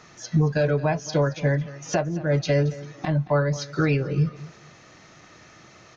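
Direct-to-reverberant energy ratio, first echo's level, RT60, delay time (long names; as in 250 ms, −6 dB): no reverb audible, −18.0 dB, no reverb audible, 224 ms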